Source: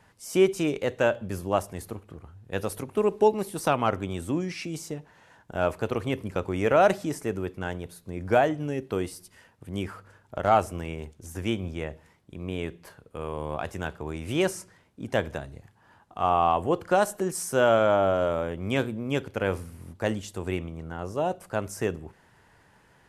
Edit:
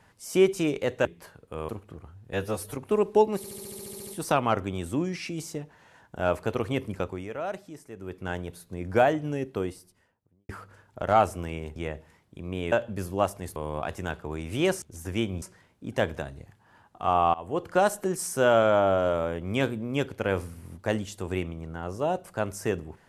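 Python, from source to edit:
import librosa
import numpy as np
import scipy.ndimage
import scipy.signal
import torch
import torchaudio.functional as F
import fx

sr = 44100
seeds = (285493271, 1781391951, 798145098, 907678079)

y = fx.studio_fade_out(x, sr, start_s=8.68, length_s=1.17)
y = fx.edit(y, sr, fx.swap(start_s=1.05, length_s=0.84, other_s=12.68, other_length_s=0.64),
    fx.stretch_span(start_s=2.53, length_s=0.28, factor=1.5),
    fx.stutter(start_s=3.43, slice_s=0.07, count=11),
    fx.fade_down_up(start_s=6.31, length_s=1.35, db=-13.5, fade_s=0.34),
    fx.move(start_s=11.12, length_s=0.6, to_s=14.58),
    fx.fade_in_from(start_s=16.5, length_s=0.54, curve='qsin', floor_db=-24.0), tone=tone)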